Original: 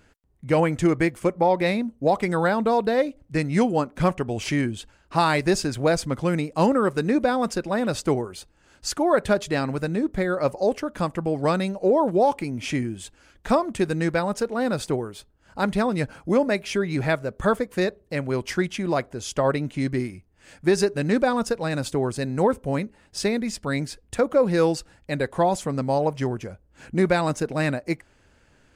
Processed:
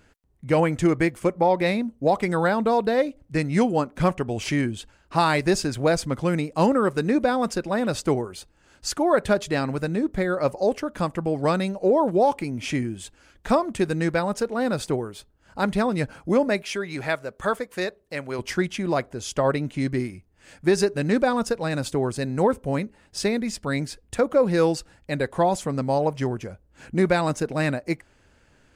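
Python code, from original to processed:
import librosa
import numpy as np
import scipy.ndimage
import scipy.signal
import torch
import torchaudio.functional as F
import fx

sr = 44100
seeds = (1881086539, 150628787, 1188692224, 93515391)

y = fx.low_shelf(x, sr, hz=360.0, db=-11.0, at=(16.62, 18.39))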